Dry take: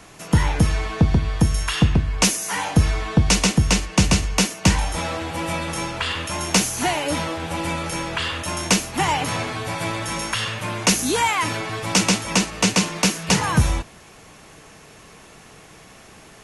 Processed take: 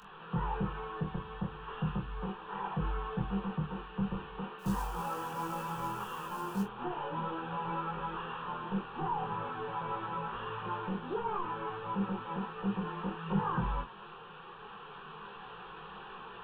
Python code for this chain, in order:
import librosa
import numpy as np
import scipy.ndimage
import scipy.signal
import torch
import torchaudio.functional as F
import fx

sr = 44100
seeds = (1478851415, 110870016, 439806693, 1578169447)

y = fx.delta_mod(x, sr, bps=16000, step_db=-35.0)
y = fx.low_shelf(y, sr, hz=450.0, db=-11.0)
y = fx.rider(y, sr, range_db=4, speed_s=2.0)
y = fx.quant_float(y, sr, bits=2, at=(4.58, 6.62), fade=0.02)
y = fx.fixed_phaser(y, sr, hz=420.0, stages=8)
y = fx.doubler(y, sr, ms=25.0, db=-6.0)
y = fx.detune_double(y, sr, cents=13)